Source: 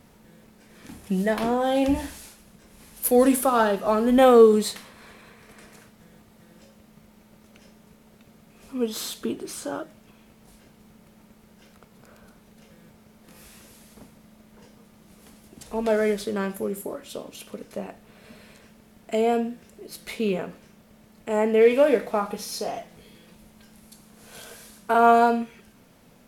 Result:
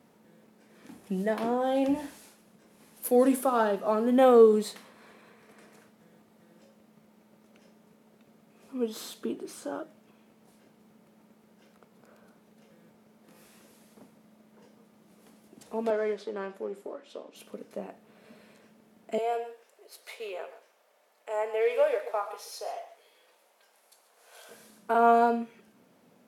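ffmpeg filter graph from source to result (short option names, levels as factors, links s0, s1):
-filter_complex "[0:a]asettb=1/sr,asplit=3[s0][s1][s2];[s0]atrim=end=15.904[s3];[s1]atrim=start=15.9:end=17.36,asetpts=PTS-STARTPTS,afade=t=in:d=0.004:c=qsin,afade=t=out:st=1.456:d=0.004:c=qsin,aeval=exprs='if(lt(val(0),0),0.708*val(0),val(0))':c=same,highpass=300,lowpass=5300[s4];[s2]atrim=start=17.356[s5];[s3][s4]acrossfade=d=0.004:c1=hsin:c2=qsin[s6];[s6][s5]acrossfade=d=0.004:c1=qsin:c2=hsin,asettb=1/sr,asplit=3[s7][s8][s9];[s7]atrim=end=19.184[s10];[s8]atrim=start=19.18:end=24.49,asetpts=PTS-STARTPTS,afade=t=in:d=0.004:c=qsin,afade=t=out:st=5.306:d=0.004:c=qsin,highpass=f=530:w=0.5412,highpass=f=530:w=1.3066,aecho=1:1:124|139:0.141|0.178,atrim=end_sample=234171[s11];[s9]atrim=start=24.486[s12];[s10][s11]acrossfade=d=0.004:c1=hsin:c2=qsin[s13];[s13][s12]acrossfade=d=0.004:c1=qsin:c2=hsin,highpass=210,tiltshelf=f=1400:g=3.5,volume=0.473"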